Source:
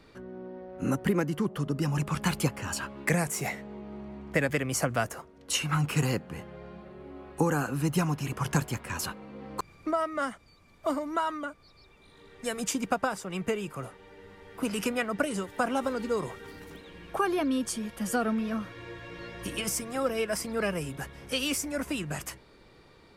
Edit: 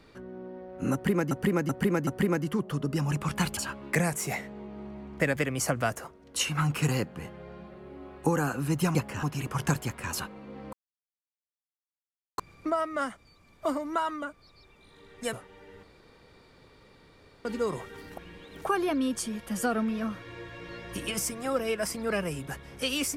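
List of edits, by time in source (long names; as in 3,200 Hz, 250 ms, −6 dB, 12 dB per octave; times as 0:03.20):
0:00.93–0:01.31: repeat, 4 plays
0:02.43–0:02.71: move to 0:08.09
0:09.59: splice in silence 1.65 s
0:12.54–0:13.83: remove
0:14.33–0:15.95: fill with room tone
0:16.67–0:17.15: reverse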